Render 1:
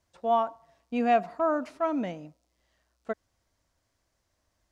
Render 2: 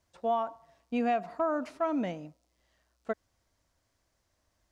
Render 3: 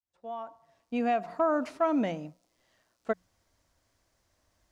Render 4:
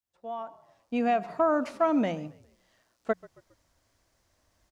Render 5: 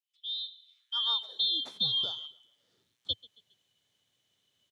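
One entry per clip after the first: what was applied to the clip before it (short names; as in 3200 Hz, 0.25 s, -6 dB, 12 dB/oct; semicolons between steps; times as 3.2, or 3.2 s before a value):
compressor, threshold -25 dBFS, peak gain reduction 7.5 dB
opening faded in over 1.50 s; notches 60/120/180 Hz; gain +3.5 dB
frequency-shifting echo 0.136 s, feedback 42%, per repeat -39 Hz, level -22 dB; gain +2 dB
four-band scrambler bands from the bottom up 2413; high-pass sweep 2700 Hz -> 110 Hz, 0.68–1.98; gain -5.5 dB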